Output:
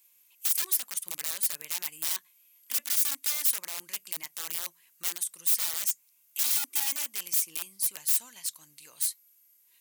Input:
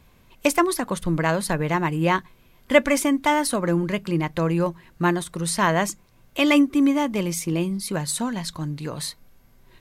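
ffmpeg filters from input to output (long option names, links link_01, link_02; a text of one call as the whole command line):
ffmpeg -i in.wav -af "aexciter=amount=2.3:drive=1.4:freq=2200,aeval=exprs='(mod(5.62*val(0)+1,2)-1)/5.62':channel_layout=same,aderivative,volume=-6dB" out.wav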